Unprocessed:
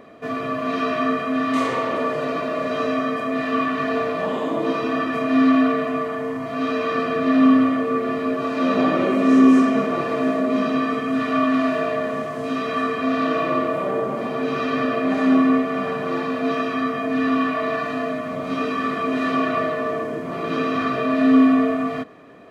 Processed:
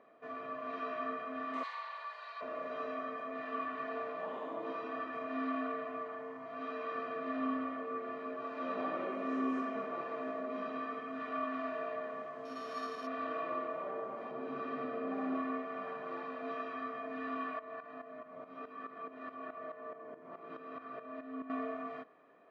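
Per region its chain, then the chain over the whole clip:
1.63–2.41 HPF 950 Hz 24 dB/oct + bell 4200 Hz +14.5 dB 0.35 oct + notch 1300 Hz, Q 6.5
12.45–13.07 sample sorter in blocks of 8 samples + HPF 56 Hz
14.31–15.35 tilt shelf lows +5.5 dB, about 670 Hz + flutter echo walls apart 10.9 m, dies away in 0.65 s
17.59–21.5 high shelf 2600 Hz -8.5 dB + compressor 1.5:1, threshold -24 dBFS + tremolo saw up 4.7 Hz, depth 75%
whole clip: LPF 1000 Hz 12 dB/oct; differentiator; gain +5.5 dB

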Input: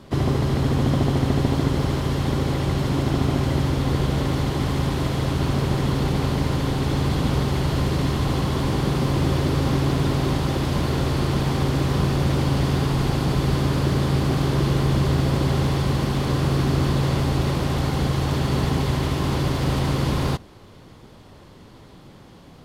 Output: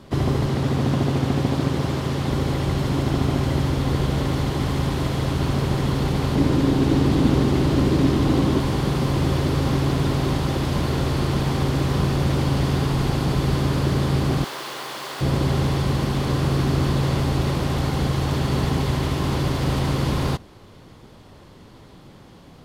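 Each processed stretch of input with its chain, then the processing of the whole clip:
0.46–2.31 HPF 89 Hz + Doppler distortion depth 0.32 ms
6.35–8.6 bell 290 Hz +9.5 dB 1 oct + Doppler distortion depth 0.26 ms
14.44–15.21 HPF 790 Hz + requantised 8-bit, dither triangular
whole clip: dry

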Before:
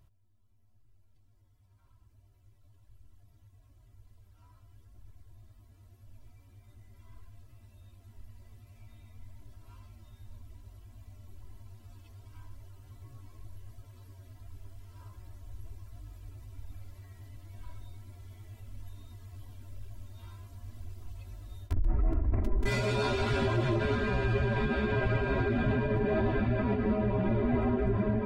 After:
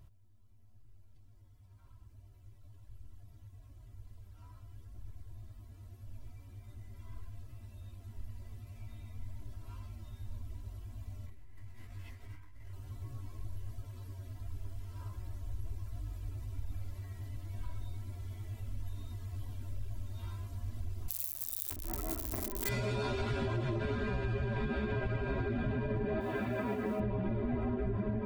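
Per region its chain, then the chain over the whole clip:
11.26–12.73 bell 2000 Hz +14.5 dB 0.51 oct + negative-ratio compressor -51 dBFS + detuned doubles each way 48 cents
21.08–22.69 switching spikes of -32.5 dBFS + RIAA curve recording + mismatched tape noise reduction encoder only
26.2–27 HPF 390 Hz 6 dB/oct + modulation noise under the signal 30 dB
whole clip: low shelf 340 Hz +3.5 dB; compressor, threshold -34 dBFS; gain +2.5 dB

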